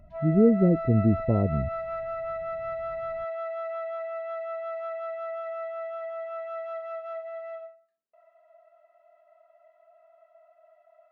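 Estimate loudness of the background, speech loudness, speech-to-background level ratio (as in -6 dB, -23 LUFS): -34.5 LUFS, -23.5 LUFS, 11.0 dB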